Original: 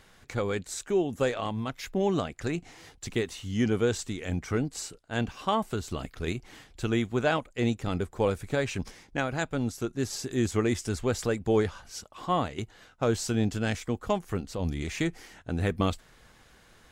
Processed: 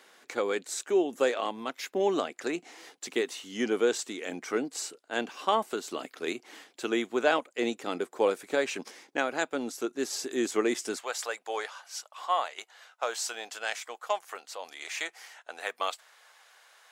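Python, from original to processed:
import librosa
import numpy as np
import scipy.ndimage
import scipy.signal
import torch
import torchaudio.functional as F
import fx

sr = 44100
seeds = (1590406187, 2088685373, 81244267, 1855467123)

y = fx.highpass(x, sr, hz=fx.steps((0.0, 290.0), (10.97, 640.0)), slope=24)
y = y * 10.0 ** (1.5 / 20.0)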